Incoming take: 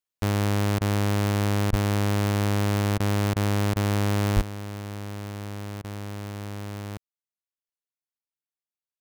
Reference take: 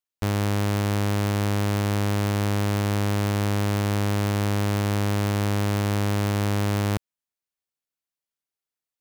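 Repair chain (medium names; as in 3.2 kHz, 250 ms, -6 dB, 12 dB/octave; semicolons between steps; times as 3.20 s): 1.69–1.81 s: high-pass 140 Hz 24 dB/octave; 4.35–4.47 s: high-pass 140 Hz 24 dB/octave; interpolate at 0.79/1.71/2.98/3.34/3.74/5.82 s, 19 ms; trim 0 dB, from 4.41 s +11.5 dB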